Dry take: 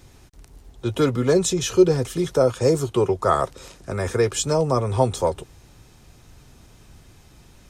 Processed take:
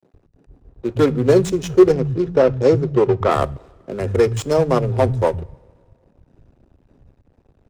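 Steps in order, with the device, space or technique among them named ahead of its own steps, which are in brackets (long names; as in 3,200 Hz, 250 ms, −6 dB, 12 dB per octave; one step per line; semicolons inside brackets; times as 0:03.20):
adaptive Wiener filter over 41 samples
early transistor amplifier (dead-zone distortion −48.5 dBFS; slew-rate limiting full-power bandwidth 120 Hz)
0:01.92–0:03.31: low-pass filter 5,100 Hz 12 dB per octave
multiband delay without the direct sound highs, lows 110 ms, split 170 Hz
coupled-rooms reverb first 0.34 s, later 2.2 s, from −18 dB, DRR 17.5 dB
level +6 dB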